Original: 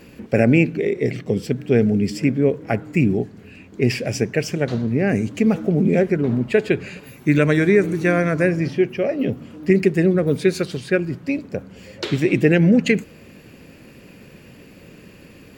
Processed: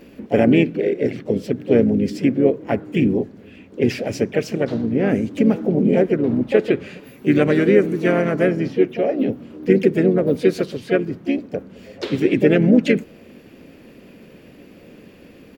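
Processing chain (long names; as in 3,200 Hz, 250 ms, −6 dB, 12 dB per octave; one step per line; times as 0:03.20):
pitch-shifted copies added −4 semitones −11 dB, +4 semitones −9 dB
octave-band graphic EQ 125/250/500/8,000 Hz −4/+5/+4/−5 dB
level −3.5 dB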